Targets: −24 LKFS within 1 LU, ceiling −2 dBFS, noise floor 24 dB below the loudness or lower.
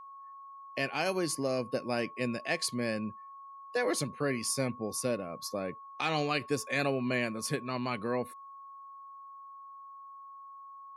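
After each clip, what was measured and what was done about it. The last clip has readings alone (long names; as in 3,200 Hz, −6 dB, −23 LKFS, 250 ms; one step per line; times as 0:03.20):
interfering tone 1,100 Hz; level of the tone −46 dBFS; integrated loudness −33.0 LKFS; sample peak −16.5 dBFS; target loudness −24.0 LKFS
→ notch filter 1,100 Hz, Q 30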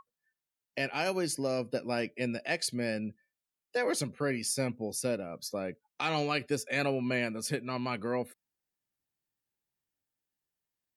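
interfering tone none found; integrated loudness −33.0 LKFS; sample peak −16.0 dBFS; target loudness −24.0 LKFS
→ level +9 dB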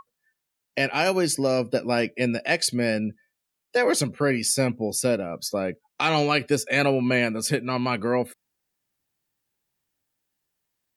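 integrated loudness −24.0 LKFS; sample peak −7.0 dBFS; background noise floor −82 dBFS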